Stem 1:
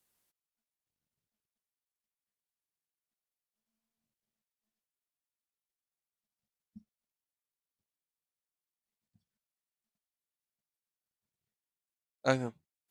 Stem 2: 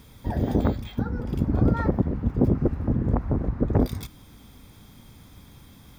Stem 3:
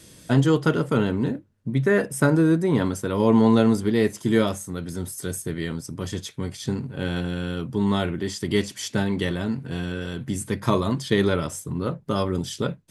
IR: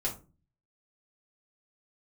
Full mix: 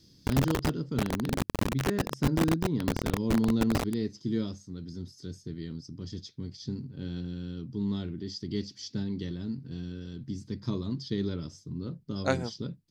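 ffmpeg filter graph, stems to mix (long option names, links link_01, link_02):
-filter_complex "[0:a]volume=0.5dB[link_01];[1:a]acompressor=threshold=-24dB:ratio=20,acrusher=bits=3:mix=0:aa=0.000001,volume=-2dB[link_02];[2:a]firequalizer=gain_entry='entry(290,0);entry(600,-15);entry(2600,-12);entry(4900,6);entry(8900,-28)':delay=0.05:min_phase=1,volume=-8dB[link_03];[link_01][link_02][link_03]amix=inputs=3:normalize=0"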